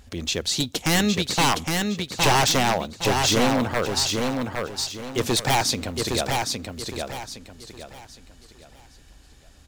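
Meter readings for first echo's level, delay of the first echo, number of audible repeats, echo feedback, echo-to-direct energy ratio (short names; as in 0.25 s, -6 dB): -4.0 dB, 0.813 s, 4, 32%, -3.5 dB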